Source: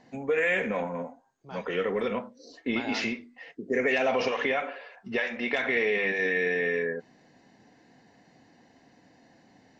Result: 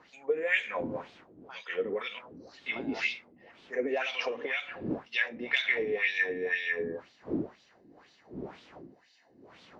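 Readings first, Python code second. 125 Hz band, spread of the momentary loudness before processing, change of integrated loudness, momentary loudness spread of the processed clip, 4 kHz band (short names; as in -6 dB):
-4.5 dB, 14 LU, -3.5 dB, 17 LU, +0.5 dB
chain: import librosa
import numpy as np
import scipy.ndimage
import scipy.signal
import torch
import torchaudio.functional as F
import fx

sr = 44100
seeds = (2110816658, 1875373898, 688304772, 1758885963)

y = fx.dmg_wind(x, sr, seeds[0], corner_hz=260.0, level_db=-35.0)
y = fx.wah_lfo(y, sr, hz=2.0, low_hz=280.0, high_hz=3700.0, q=2.5)
y = fx.peak_eq(y, sr, hz=6600.0, db=13.5, octaves=2.6)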